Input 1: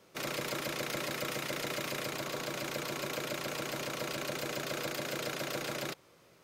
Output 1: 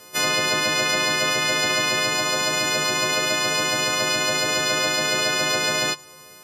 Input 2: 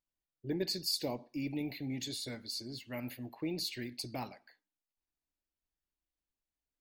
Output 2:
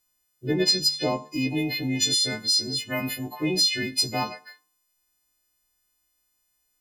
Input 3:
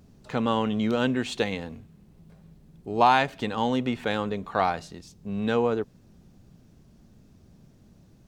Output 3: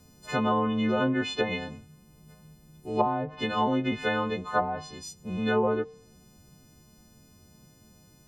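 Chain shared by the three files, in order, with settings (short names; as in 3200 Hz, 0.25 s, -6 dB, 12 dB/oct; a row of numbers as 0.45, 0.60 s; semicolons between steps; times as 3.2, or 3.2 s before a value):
frequency quantiser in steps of 3 st; resonator 150 Hz, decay 0.61 s, harmonics odd, mix 60%; treble ducked by the level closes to 450 Hz, closed at -24 dBFS; normalise peaks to -9 dBFS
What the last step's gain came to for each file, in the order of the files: +19.0, +19.0, +7.0 dB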